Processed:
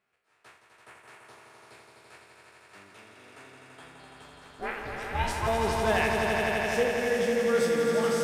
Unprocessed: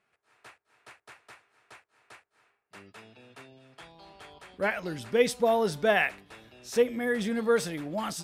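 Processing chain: spectral trails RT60 0.46 s; 4.4–5.46 ring modulator 120 Hz -> 600 Hz; swelling echo 84 ms, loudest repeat 5, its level -6 dB; gain -5 dB

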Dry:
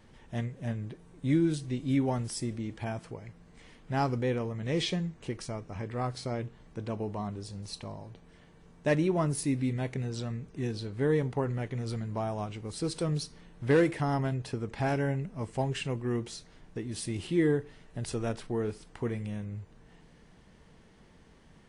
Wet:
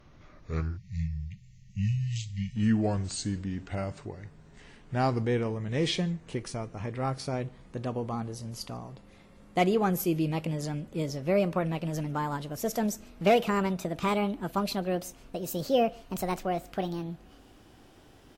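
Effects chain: speed glide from 65% -> 171%; outdoor echo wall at 25 m, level -27 dB; spectral delete 0.77–2.56, 210–1800 Hz; gain +2 dB

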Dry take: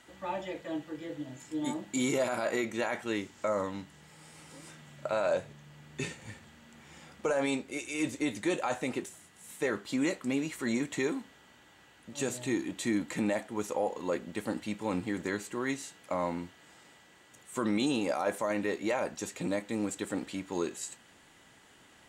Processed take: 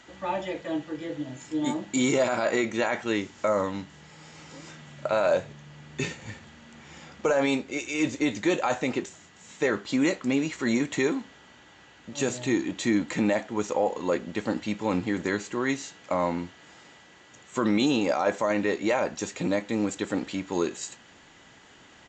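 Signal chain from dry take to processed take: downsampling 16000 Hz; gain +6 dB

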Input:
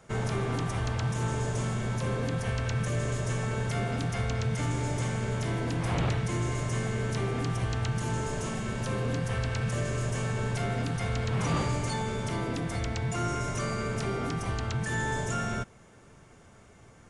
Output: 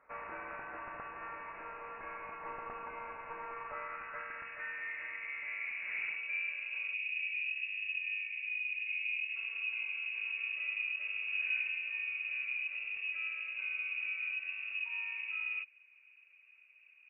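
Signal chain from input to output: band-pass sweep 1800 Hz -> 220 Hz, 3.51–7.14; inverted band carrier 2700 Hz; spectral gain 6.94–9.36, 220–1700 Hz -15 dB

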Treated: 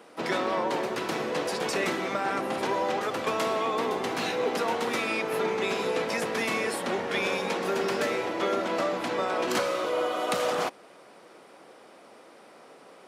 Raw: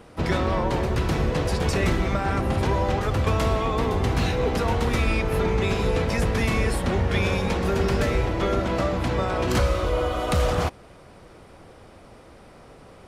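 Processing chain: Bessel high-pass 330 Hz, order 4; gain -1 dB

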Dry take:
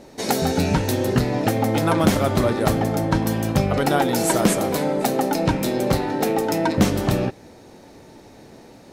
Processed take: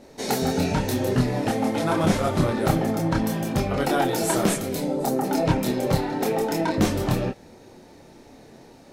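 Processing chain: 1.1–2.42 CVSD 64 kbps; chorus voices 6, 0.76 Hz, delay 27 ms, depth 4.5 ms; 4.55–5.23 bell 640 Hz -> 3600 Hz -11 dB 1.4 oct

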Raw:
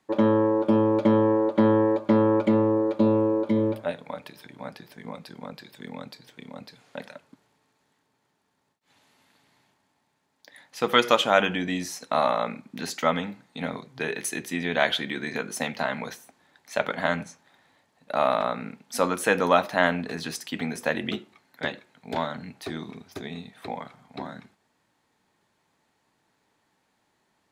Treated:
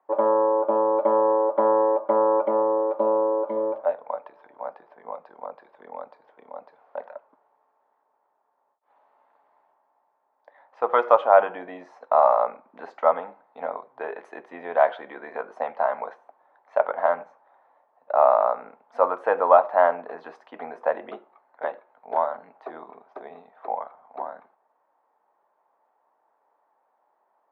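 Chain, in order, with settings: Butterworth band-pass 780 Hz, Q 1.3; gain +7 dB

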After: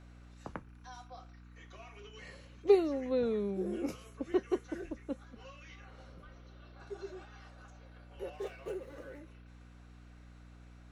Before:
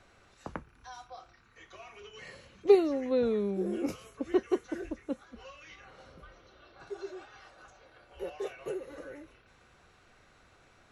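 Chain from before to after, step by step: hum 60 Hz, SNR 16 dB; 8.33–9.19 running maximum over 3 samples; gain -3.5 dB

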